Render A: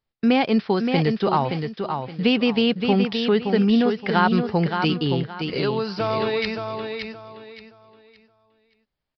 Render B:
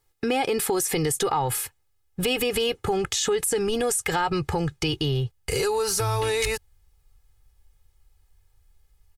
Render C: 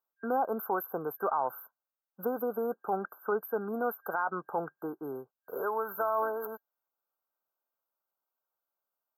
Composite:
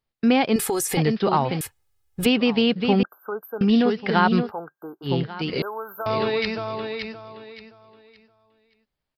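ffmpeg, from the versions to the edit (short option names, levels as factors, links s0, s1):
-filter_complex "[1:a]asplit=2[s0][s1];[2:a]asplit=3[s2][s3][s4];[0:a]asplit=6[s5][s6][s7][s8][s9][s10];[s5]atrim=end=0.562[s11];[s0]atrim=start=0.558:end=0.972[s12];[s6]atrim=start=0.968:end=1.612[s13];[s1]atrim=start=1.608:end=2.262[s14];[s7]atrim=start=2.258:end=3.032[s15];[s2]atrim=start=3.028:end=3.612[s16];[s8]atrim=start=3.608:end=4.52[s17];[s3]atrim=start=4.42:end=5.12[s18];[s9]atrim=start=5.02:end=5.622[s19];[s4]atrim=start=5.618:end=6.062[s20];[s10]atrim=start=6.058[s21];[s11][s12]acrossfade=d=0.004:c1=hsin:c2=hsin[s22];[s22][s13]acrossfade=d=0.004:c1=hsin:c2=hsin[s23];[s23][s14]acrossfade=d=0.004:c1=hsin:c2=hsin[s24];[s24][s15]acrossfade=d=0.004:c1=hsin:c2=hsin[s25];[s25][s16]acrossfade=d=0.004:c1=hsin:c2=hsin[s26];[s26][s17]acrossfade=d=0.004:c1=hsin:c2=hsin[s27];[s27][s18]acrossfade=d=0.1:c1=tri:c2=tri[s28];[s28][s19]acrossfade=d=0.1:c1=tri:c2=tri[s29];[s29][s20]acrossfade=d=0.004:c1=hsin:c2=hsin[s30];[s30][s21]acrossfade=d=0.004:c1=hsin:c2=hsin"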